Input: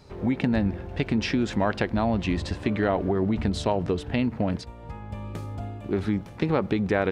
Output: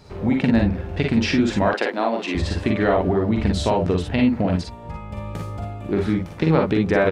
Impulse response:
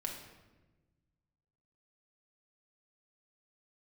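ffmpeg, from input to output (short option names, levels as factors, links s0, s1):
-filter_complex "[0:a]asettb=1/sr,asplit=3[s0][s1][s2];[s0]atrim=end=1.684[s3];[s1]atrim=start=1.68:end=2.35,asetpts=PTS-STARTPTS,afade=t=in:d=0.004:c=qsin,afade=t=out:st=0.666:d=0.004:c=qsin,highpass=f=300:w=0.5412,highpass=f=300:w=1.3066[s4];[s2]atrim=start=2.346[s5];[s3][s4]acrossfade=d=0.004:c1=hsin:c2=qsin[s6];[s6][s5]acrossfade=d=0.004:c1=qsin:c2=hsin,aecho=1:1:44|56:0.596|0.531,volume=1.5"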